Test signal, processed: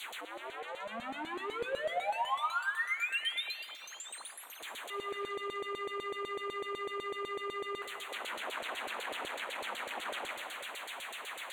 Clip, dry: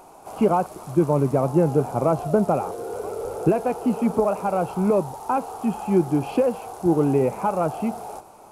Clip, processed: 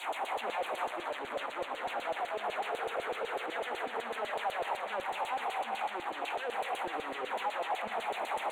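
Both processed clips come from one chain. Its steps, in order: infinite clipping; Chebyshev high-pass 210 Hz, order 10; LFO band-pass saw down 8 Hz 510–5000 Hz; Butterworth band-stop 5200 Hz, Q 1.5; on a send: delay with a stepping band-pass 0.226 s, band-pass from 720 Hz, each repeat 1.4 oct, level -5.5 dB; on the sum: non-linear reverb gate 0.44 s flat, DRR 11 dB; Doppler distortion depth 0.11 ms; gain -5 dB

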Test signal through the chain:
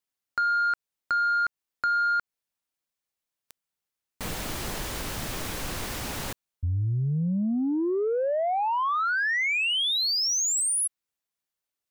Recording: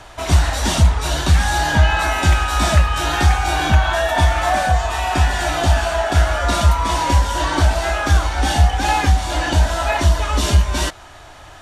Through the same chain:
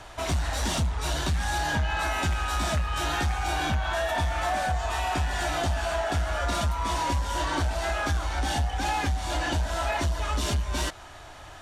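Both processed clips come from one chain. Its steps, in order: compressor 3:1, threshold -18 dBFS; soft clip -15 dBFS; gain -4.5 dB

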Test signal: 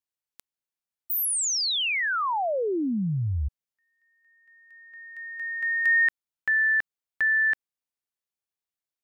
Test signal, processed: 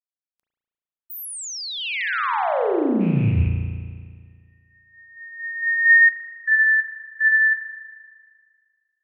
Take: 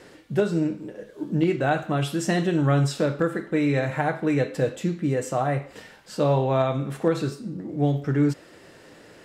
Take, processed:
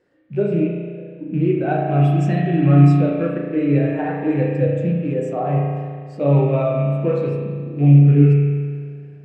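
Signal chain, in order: rattling part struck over -26 dBFS, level -24 dBFS; spring tank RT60 2.7 s, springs 35 ms, chirp 50 ms, DRR -3.5 dB; spectral expander 1.5:1; gain +2 dB

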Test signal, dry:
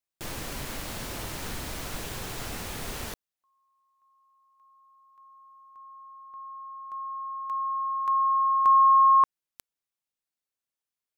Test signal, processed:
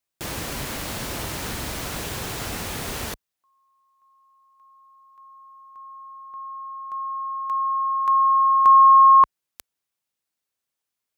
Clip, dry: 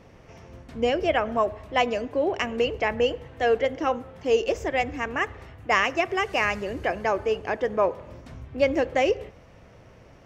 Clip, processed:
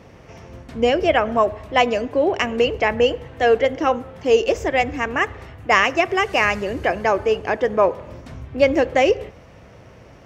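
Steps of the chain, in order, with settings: HPF 41 Hz; gain +6 dB

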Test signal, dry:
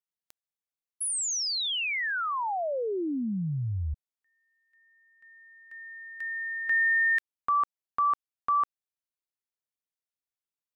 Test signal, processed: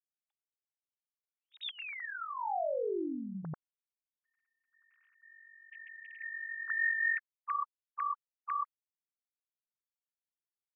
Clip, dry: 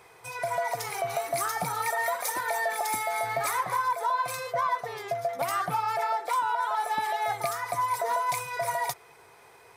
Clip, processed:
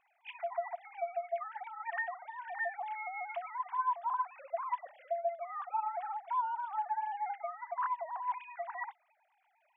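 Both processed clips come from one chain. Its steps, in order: sine-wave speech; gain -8.5 dB

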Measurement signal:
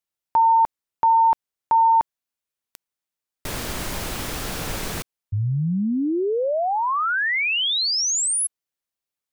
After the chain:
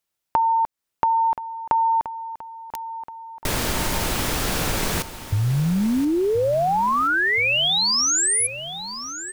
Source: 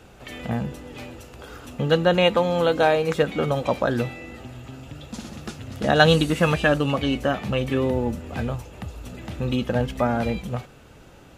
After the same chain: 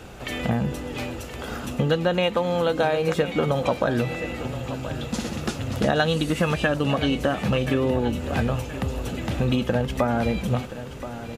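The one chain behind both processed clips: compressor 6:1, threshold -26 dBFS; feedback echo 1.026 s, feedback 52%, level -13 dB; gain +7 dB

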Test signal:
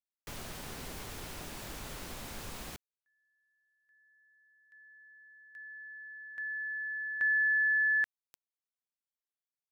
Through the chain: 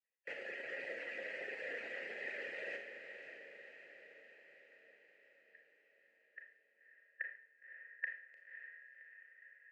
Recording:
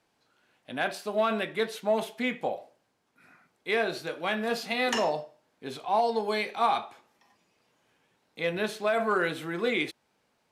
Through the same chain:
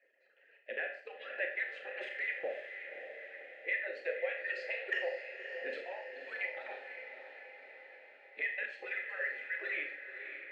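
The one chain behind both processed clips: median-filter separation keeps percussive; bell 1700 Hz +8.5 dB 2.5 oct; in parallel at -2 dB: level quantiser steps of 14 dB; on the sum: transient shaper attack -7 dB, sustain -11 dB; compressor 10:1, threshold -34 dBFS; vowel filter e; speaker cabinet 170–7800 Hz, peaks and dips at 400 Hz +5 dB, 2000 Hz +8 dB, 3600 Hz -9 dB, 5800 Hz -6 dB; on a send: diffused feedback echo 0.558 s, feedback 61%, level -8.5 dB; on the sum: Schroeder reverb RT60 0.47 s, combs from 27 ms, DRR 3.5 dB; gain +7 dB

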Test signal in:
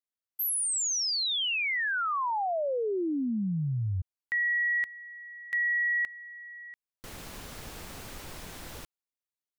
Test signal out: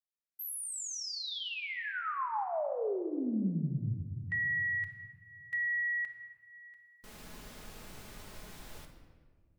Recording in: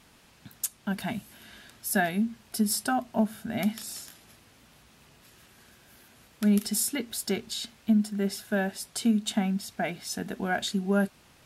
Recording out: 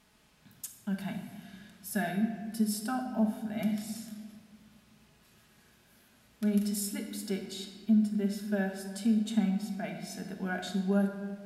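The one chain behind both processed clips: harmonic-percussive split percussive -5 dB; shoebox room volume 1800 m³, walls mixed, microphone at 1.4 m; gain -6.5 dB

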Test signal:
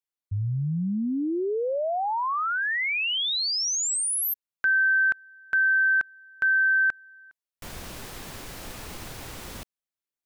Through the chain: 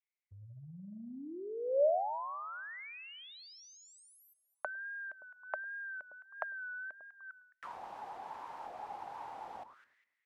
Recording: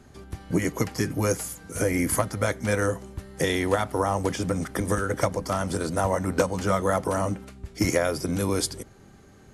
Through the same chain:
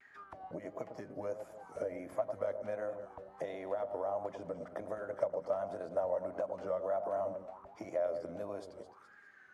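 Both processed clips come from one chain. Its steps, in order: echo with dull and thin repeats by turns 0.103 s, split 1100 Hz, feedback 51%, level -10 dB; compressor, threshold -25 dBFS; dynamic EQ 510 Hz, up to -7 dB, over -43 dBFS, Q 0.84; auto-wah 610–2100 Hz, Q 8.4, down, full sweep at -32.5 dBFS; wow and flutter 1.4 Hz 74 cents; gain +9.5 dB

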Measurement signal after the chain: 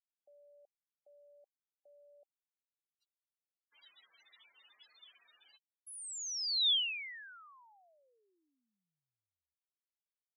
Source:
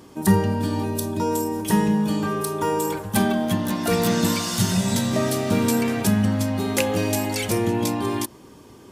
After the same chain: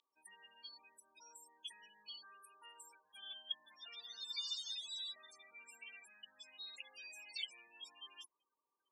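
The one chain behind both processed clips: limiter -15 dBFS; loudest bins only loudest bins 32; ladder band-pass 3800 Hz, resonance 65%

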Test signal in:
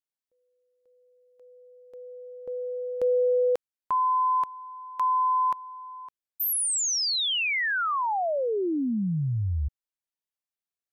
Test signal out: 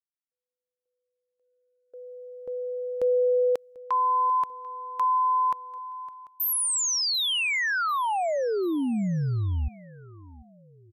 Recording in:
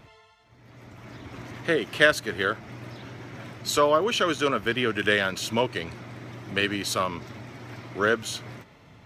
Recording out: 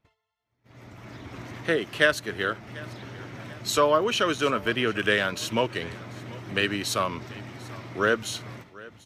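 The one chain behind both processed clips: gate -50 dBFS, range -21 dB; AGC gain up to 5.5 dB; feedback echo 0.742 s, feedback 43%, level -21 dB; gain -5 dB

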